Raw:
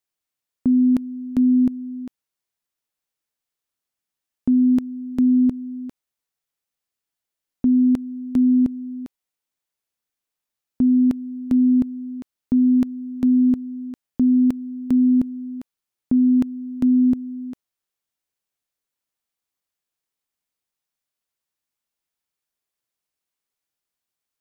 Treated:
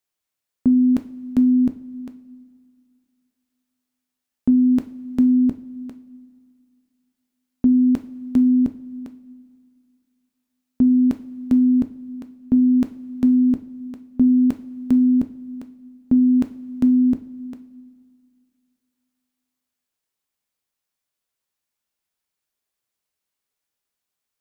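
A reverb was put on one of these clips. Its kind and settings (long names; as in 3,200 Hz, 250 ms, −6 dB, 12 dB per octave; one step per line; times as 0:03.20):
coupled-rooms reverb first 0.36 s, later 2.4 s, from −17 dB, DRR 8 dB
level +1.5 dB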